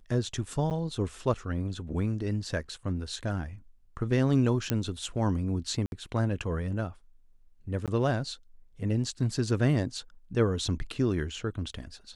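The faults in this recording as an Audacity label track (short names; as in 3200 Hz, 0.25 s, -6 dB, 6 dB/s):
0.700000	0.710000	gap 9.1 ms
4.700000	4.700000	pop -12 dBFS
5.860000	5.920000	gap 61 ms
7.860000	7.880000	gap 17 ms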